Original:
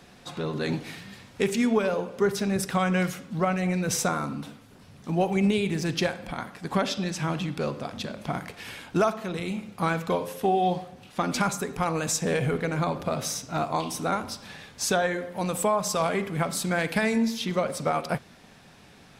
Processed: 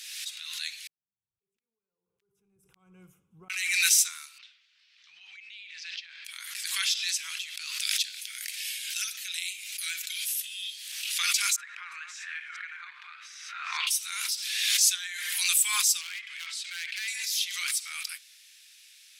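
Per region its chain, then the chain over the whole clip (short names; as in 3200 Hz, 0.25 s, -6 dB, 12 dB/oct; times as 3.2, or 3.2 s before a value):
0.87–3.5 inverse Chebyshev low-pass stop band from 1700 Hz, stop band 70 dB + auto swell 0.296 s
4.38–6.25 LPF 4800 Hz 24 dB/oct + compressor 5:1, threshold -31 dBFS + high shelf 3200 Hz -9.5 dB
7.79–10.92 steep high-pass 1400 Hz 48 dB/oct + high shelf 2400 Hz +5.5 dB
11.56–13.87 reverse delay 0.201 s, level -7 dB + synth low-pass 1500 Hz, resonance Q 2.2
16.01–17.08 LPF 3400 Hz + hard clip -22 dBFS
whole clip: inverse Chebyshev high-pass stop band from 660 Hz, stop band 60 dB; bell 13000 Hz +10 dB 2 oct; backwards sustainer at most 36 dB/s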